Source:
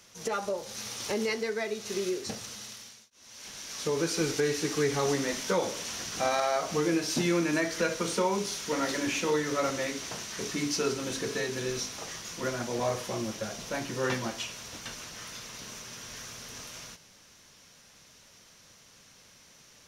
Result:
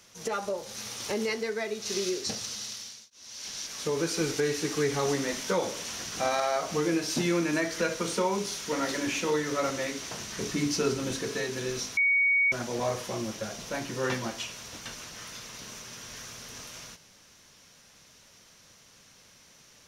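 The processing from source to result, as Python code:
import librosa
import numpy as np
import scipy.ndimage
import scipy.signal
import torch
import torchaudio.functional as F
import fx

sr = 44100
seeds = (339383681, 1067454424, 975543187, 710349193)

y = fx.peak_eq(x, sr, hz=4900.0, db=7.5, octaves=1.3, at=(1.82, 3.67))
y = fx.low_shelf(y, sr, hz=260.0, db=7.0, at=(10.19, 11.16))
y = fx.edit(y, sr, fx.bleep(start_s=11.97, length_s=0.55, hz=2240.0, db=-20.5), tone=tone)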